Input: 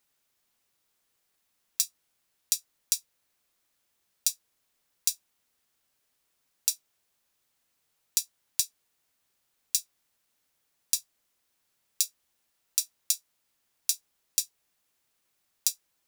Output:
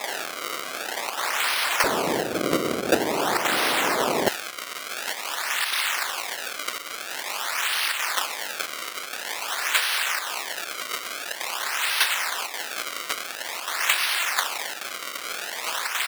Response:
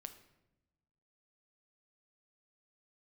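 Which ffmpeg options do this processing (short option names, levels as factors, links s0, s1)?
-af "aeval=exprs='val(0)+0.5*0.075*sgn(val(0))':c=same,aphaser=in_gain=1:out_gain=1:delay=2.9:decay=0.66:speed=0.88:type=sinusoidal,acontrast=81,aemphasis=mode=production:type=75fm,aresample=32000,aresample=44100,acrusher=samples=29:mix=1:aa=0.000001:lfo=1:lforange=46.4:lforate=0.48,asetnsamples=n=441:p=0,asendcmd='1.84 highpass f 280;4.28 highpass f 1400',highpass=1000,acrusher=bits=8:mode=log:mix=0:aa=0.000001,volume=0.188"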